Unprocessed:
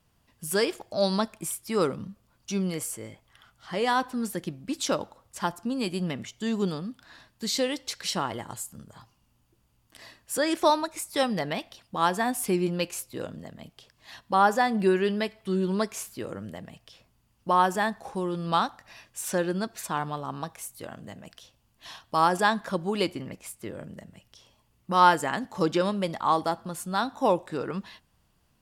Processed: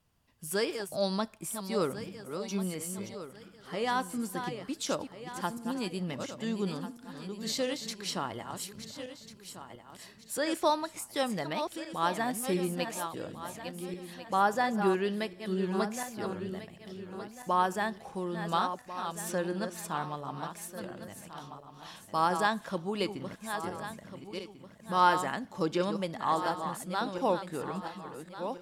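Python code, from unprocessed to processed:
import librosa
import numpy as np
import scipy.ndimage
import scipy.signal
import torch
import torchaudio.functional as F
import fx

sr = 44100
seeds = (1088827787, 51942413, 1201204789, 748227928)

y = fx.reverse_delay_fb(x, sr, ms=697, feedback_pct=54, wet_db=-8)
y = y * 10.0 ** (-5.5 / 20.0)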